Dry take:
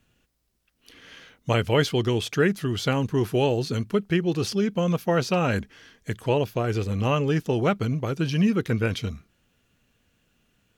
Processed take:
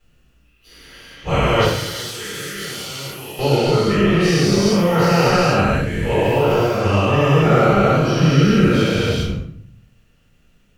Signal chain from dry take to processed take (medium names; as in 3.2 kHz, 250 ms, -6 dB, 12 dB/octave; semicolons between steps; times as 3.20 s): every event in the spectrogram widened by 480 ms; 1.64–3.39 s: pre-emphasis filter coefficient 0.9; in parallel at -8 dB: hard clipper -8.5 dBFS, distortion -23 dB; on the sum: simulated room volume 76 m³, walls mixed, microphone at 4 m; trim -17.5 dB